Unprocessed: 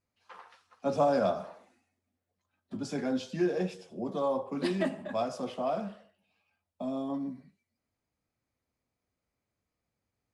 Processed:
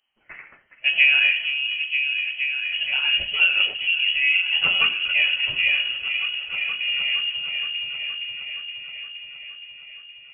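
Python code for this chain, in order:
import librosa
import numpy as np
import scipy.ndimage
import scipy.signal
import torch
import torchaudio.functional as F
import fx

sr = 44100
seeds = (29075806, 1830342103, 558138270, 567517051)

p1 = fx.wow_flutter(x, sr, seeds[0], rate_hz=2.1, depth_cents=18.0)
p2 = p1 + fx.echo_opening(p1, sr, ms=469, hz=400, octaves=1, feedback_pct=70, wet_db=-3, dry=0)
p3 = fx.freq_invert(p2, sr, carrier_hz=3100)
y = F.gain(torch.from_numpy(p3), 9.0).numpy()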